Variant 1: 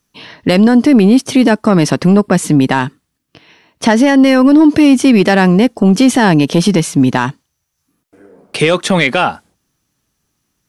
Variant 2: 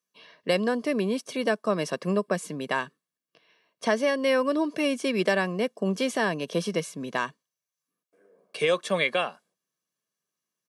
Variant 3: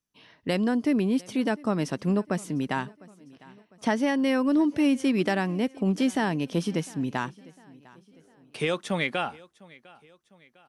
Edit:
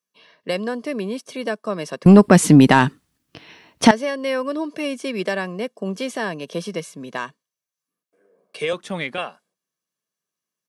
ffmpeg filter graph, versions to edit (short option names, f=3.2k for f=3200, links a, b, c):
-filter_complex "[1:a]asplit=3[a][b][c];[a]atrim=end=2.062[d];[0:a]atrim=start=2.058:end=3.912[e];[b]atrim=start=3.908:end=8.732[f];[2:a]atrim=start=8.728:end=9.182[g];[c]atrim=start=9.178[h];[d][e]acrossfade=d=0.004:c1=hsin:c2=hsin[i];[i][f]acrossfade=d=0.004:c1=hsin:c2=hsin[j];[j][g]acrossfade=d=0.004:c1=hsin:c2=hsin[k];[k][h]acrossfade=d=0.004:c1=hsin:c2=hsin"